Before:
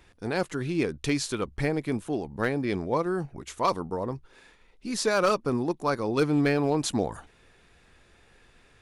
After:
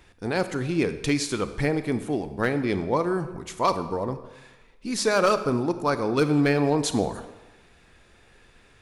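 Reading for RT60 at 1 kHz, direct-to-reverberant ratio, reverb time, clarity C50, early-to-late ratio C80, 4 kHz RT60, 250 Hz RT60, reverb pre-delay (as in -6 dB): 1.2 s, 11.0 dB, 1.1 s, 12.0 dB, 13.5 dB, 0.90 s, 1.1 s, 29 ms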